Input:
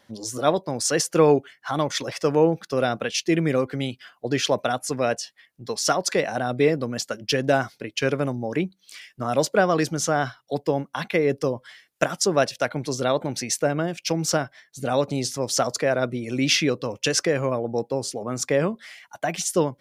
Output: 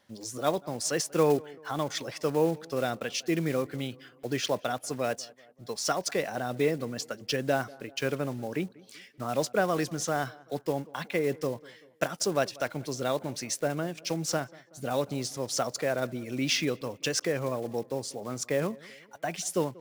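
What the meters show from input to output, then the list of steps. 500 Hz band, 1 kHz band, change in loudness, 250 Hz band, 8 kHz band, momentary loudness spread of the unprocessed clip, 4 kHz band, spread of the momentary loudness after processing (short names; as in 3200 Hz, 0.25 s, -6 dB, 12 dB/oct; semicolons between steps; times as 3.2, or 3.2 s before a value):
-7.0 dB, -7.0 dB, -7.0 dB, -7.0 dB, -7.0 dB, 9 LU, -7.0 dB, 9 LU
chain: block floating point 5-bit; on a send: tape echo 0.19 s, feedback 55%, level -21.5 dB, low-pass 1800 Hz; on the sum: gain -7 dB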